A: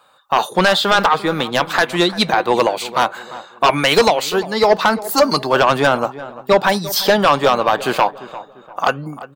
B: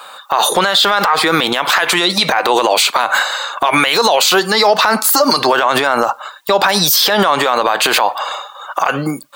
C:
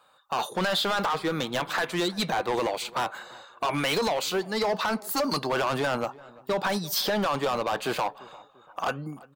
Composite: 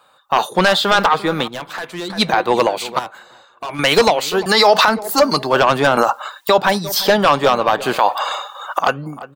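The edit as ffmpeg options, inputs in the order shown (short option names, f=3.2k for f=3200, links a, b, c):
-filter_complex "[2:a]asplit=2[a][b];[1:a]asplit=3[c][d][e];[0:a]asplit=6[f][g][h][i][j][k];[f]atrim=end=1.482[l];[a]atrim=start=1.478:end=2.102[m];[g]atrim=start=2.098:end=2.992[n];[b]atrim=start=2.988:end=3.792[o];[h]atrim=start=3.788:end=4.462[p];[c]atrim=start=4.458:end=4.882[q];[i]atrim=start=4.878:end=5.972[r];[d]atrim=start=5.968:end=6.582[s];[j]atrim=start=6.578:end=7.992[t];[e]atrim=start=7.988:end=8.792[u];[k]atrim=start=8.788[v];[l][m]acrossfade=d=0.004:c1=hsin:c2=hsin[w];[w][n]acrossfade=d=0.004:c1=hsin:c2=hsin[x];[x][o]acrossfade=d=0.004:c1=hsin:c2=hsin[y];[y][p]acrossfade=d=0.004:c1=hsin:c2=hsin[z];[z][q]acrossfade=d=0.004:c1=hsin:c2=hsin[aa];[aa][r]acrossfade=d=0.004:c1=hsin:c2=hsin[ab];[ab][s]acrossfade=d=0.004:c1=hsin:c2=hsin[ac];[ac][t]acrossfade=d=0.004:c1=hsin:c2=hsin[ad];[ad][u]acrossfade=d=0.004:c1=hsin:c2=hsin[ae];[ae][v]acrossfade=d=0.004:c1=hsin:c2=hsin"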